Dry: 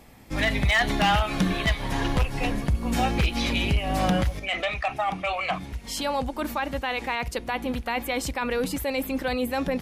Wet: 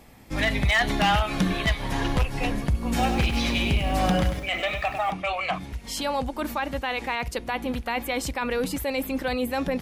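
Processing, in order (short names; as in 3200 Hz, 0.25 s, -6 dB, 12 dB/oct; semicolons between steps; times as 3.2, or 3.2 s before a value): 2.89–5.11 lo-fi delay 99 ms, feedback 35%, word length 8-bit, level -7.5 dB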